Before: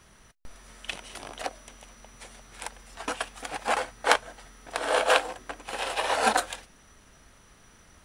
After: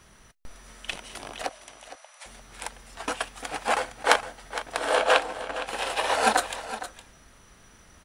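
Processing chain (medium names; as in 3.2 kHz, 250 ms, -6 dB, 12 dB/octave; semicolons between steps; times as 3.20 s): 1.49–2.26 s: brick-wall FIR band-pass 510–12000 Hz; 4.96–5.67 s: treble shelf 8.9 kHz -10.5 dB; delay 462 ms -13 dB; trim +1.5 dB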